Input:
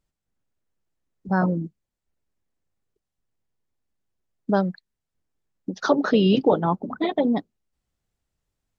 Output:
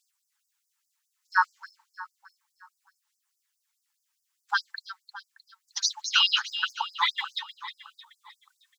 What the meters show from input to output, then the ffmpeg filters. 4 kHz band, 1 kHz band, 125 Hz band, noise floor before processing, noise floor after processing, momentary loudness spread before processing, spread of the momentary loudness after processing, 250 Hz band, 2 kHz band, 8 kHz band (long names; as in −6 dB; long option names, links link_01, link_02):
+11.0 dB, −2.0 dB, below −40 dB, −84 dBFS, −80 dBFS, 16 LU, 22 LU, below −40 dB, +5.5 dB, can't be measured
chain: -filter_complex "[0:a]bass=frequency=250:gain=3,treble=frequency=4000:gain=5,aphaser=in_gain=1:out_gain=1:delay=4.5:decay=0.35:speed=0.32:type=sinusoidal,asplit=2[link_01][link_02];[link_02]aecho=0:1:309|618|927|1236|1545:0.266|0.13|0.0639|0.0313|0.0153[link_03];[link_01][link_03]amix=inputs=2:normalize=0,afftfilt=real='re*gte(b*sr/1024,790*pow(4800/790,0.5+0.5*sin(2*PI*4.8*pts/sr)))':imag='im*gte(b*sr/1024,790*pow(4800/790,0.5+0.5*sin(2*PI*4.8*pts/sr)))':win_size=1024:overlap=0.75,volume=9dB"